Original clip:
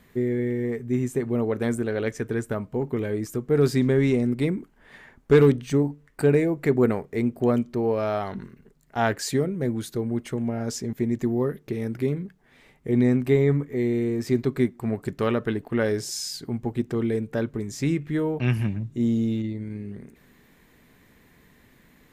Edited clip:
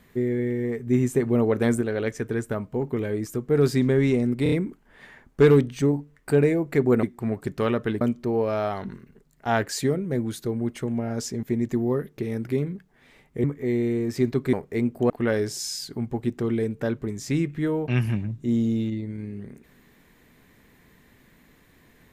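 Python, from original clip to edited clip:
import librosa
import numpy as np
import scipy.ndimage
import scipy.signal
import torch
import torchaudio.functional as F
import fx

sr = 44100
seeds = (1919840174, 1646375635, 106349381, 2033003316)

y = fx.edit(x, sr, fx.clip_gain(start_s=0.87, length_s=0.94, db=3.5),
    fx.stutter(start_s=4.43, slice_s=0.03, count=4),
    fx.swap(start_s=6.94, length_s=0.57, other_s=14.64, other_length_s=0.98),
    fx.cut(start_s=12.94, length_s=0.61), tone=tone)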